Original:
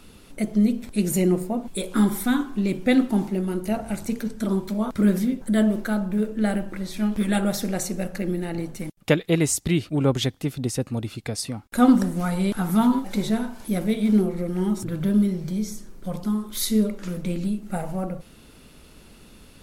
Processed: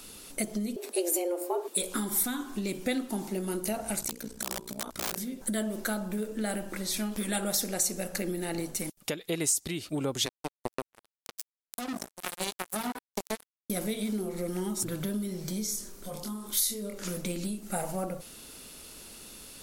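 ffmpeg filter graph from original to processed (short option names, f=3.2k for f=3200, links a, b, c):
-filter_complex "[0:a]asettb=1/sr,asplit=3[a][b][c];[a]atrim=end=0.764[d];[b]atrim=start=0.76:end=1.77,asetpts=PTS-STARTPTS,afade=t=in:d=0.004:c=qsin,afade=t=out:st=1.006:d=0.004:c=qsin,highpass=92,equalizer=f=7k:w=0.6:g=-4.5,afreqshift=170[e];[c]atrim=start=1.766[f];[d][e]acrossfade=d=0.004:c1=hsin:c2=qsin[g];[g][f]acrossfade=d=0.004:c1=qsin:c2=hsin,asettb=1/sr,asplit=3[h][i][j];[h]atrim=end=4.014[k];[i]atrim=start=4.01:end=5.18,asetpts=PTS-STARTPTS,afade=t=in:d=0.004:c=qsin,afade=t=out:st=1.166:d=0.004:c=qsin,tremolo=f=60:d=0.857,aeval=exprs='(mod(9.44*val(0)+1,2)-1)/9.44':c=same[l];[j]atrim=start=5.176[m];[k][l]acrossfade=d=0.004:c1=hsin:c2=qsin[n];[n][m]acrossfade=d=0.004:c1=qsin:c2=hsin,asettb=1/sr,asplit=3[o][p][q];[o]atrim=end=10.264[r];[p]atrim=start=10.26:end=13.7,asetpts=PTS-STARTPTS,afade=t=in:d=0.004:c=qsin,afade=t=out:st=3.436:d=0.004:c=qsin,highpass=f=140:w=0.5412,highpass=f=140:w=1.3066,acrusher=bits=2:mix=0:aa=0.5[s];[q]atrim=start=13.696[t];[r][s]acrossfade=d=0.004:c1=hsin:c2=qsin[u];[u][t]acrossfade=d=0.004:c1=qsin:c2=hsin,asettb=1/sr,asplit=3[v][w][x];[v]atrim=end=15.664[y];[w]atrim=start=15.66:end=17.05,asetpts=PTS-STARTPTS,afade=t=in:d=0.004:c=qsin,afade=t=out:st=1.386:d=0.004:c=qsin,acompressor=threshold=-35dB:ratio=2.5:attack=3.2:release=140:knee=1:detection=peak,asplit=2[z][aa];[aa]adelay=25,volume=-4dB[ab];[z][ab]amix=inputs=2:normalize=0,atrim=end_sample=61299[ac];[x]atrim=start=17.046[ad];[y][ac]acrossfade=d=0.004:c1=hsin:c2=qsin[ae];[ae][ad]acrossfade=d=0.004:c1=qsin:c2=hsin,acompressor=threshold=-25dB:ratio=6,bass=f=250:g=-8,treble=f=4k:g=11,alimiter=limit=-15.5dB:level=0:latency=1:release=330"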